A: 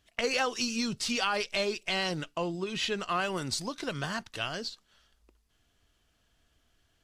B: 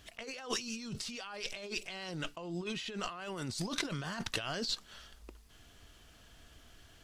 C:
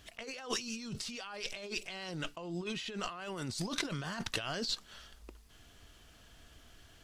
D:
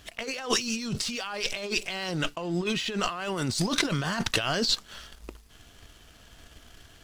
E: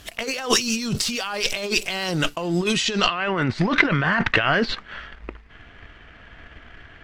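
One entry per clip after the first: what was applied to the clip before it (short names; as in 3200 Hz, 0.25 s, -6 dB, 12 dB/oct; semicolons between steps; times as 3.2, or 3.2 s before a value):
negative-ratio compressor -43 dBFS, ratio -1; gain +2.5 dB
nothing audible
sample leveller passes 1; gain +6.5 dB
low-pass sweep 15000 Hz -> 2000 Hz, 2.6–3.26; gain +6.5 dB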